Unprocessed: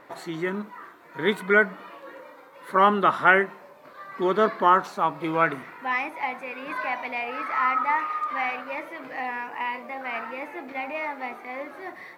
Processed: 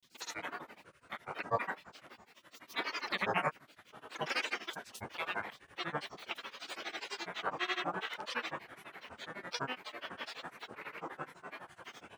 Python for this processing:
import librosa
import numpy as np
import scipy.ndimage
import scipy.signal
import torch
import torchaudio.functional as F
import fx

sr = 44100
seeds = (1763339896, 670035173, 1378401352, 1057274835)

y = fx.spec_gate(x, sr, threshold_db=-15, keep='weak')
y = fx.granulator(y, sr, seeds[0], grain_ms=100.0, per_s=12.0, spray_ms=100.0, spread_st=12)
y = F.gain(torch.from_numpy(y), 2.0).numpy()